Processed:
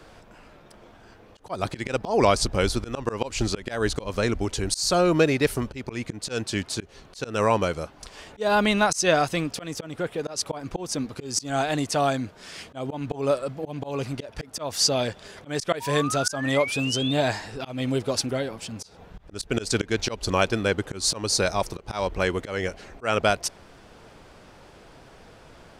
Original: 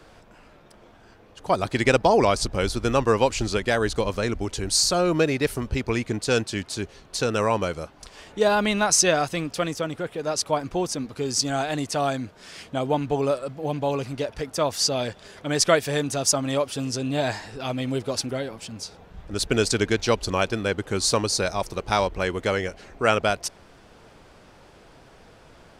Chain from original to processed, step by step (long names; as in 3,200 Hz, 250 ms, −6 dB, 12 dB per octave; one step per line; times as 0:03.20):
sound drawn into the spectrogram rise, 0:15.80–0:17.14, 910–3,700 Hz −33 dBFS
volume swells 189 ms
level +1.5 dB